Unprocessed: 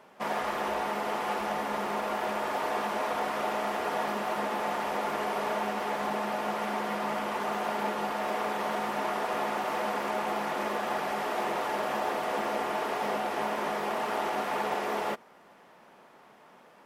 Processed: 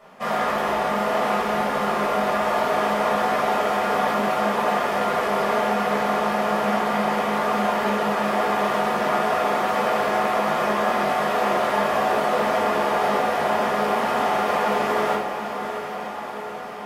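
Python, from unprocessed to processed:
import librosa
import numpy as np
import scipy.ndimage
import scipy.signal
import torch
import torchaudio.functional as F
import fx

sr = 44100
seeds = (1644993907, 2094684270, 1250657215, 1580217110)

y = fx.echo_diffused(x, sr, ms=736, feedback_pct=68, wet_db=-9.0)
y = fx.room_shoebox(y, sr, seeds[0], volume_m3=810.0, walls='furnished', distance_m=6.2)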